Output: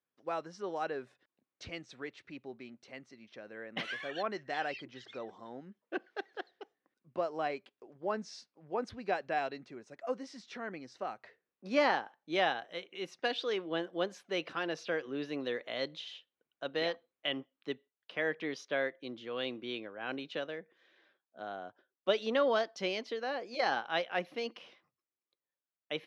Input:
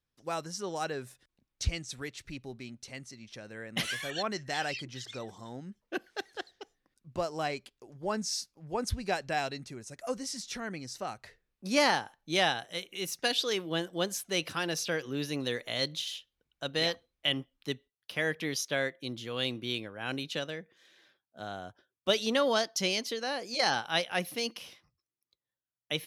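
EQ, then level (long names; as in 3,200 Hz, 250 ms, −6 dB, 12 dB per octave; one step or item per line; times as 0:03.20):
band-pass filter 290–3,600 Hz
high-shelf EQ 2,500 Hz −9 dB
notch filter 870 Hz, Q 26
0.0 dB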